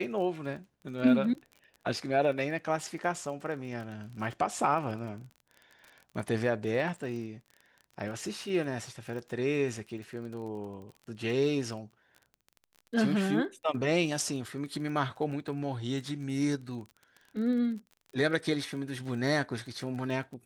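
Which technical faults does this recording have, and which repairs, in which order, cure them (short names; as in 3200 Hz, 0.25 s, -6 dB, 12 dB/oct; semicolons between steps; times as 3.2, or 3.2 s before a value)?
crackle 27/s -40 dBFS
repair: de-click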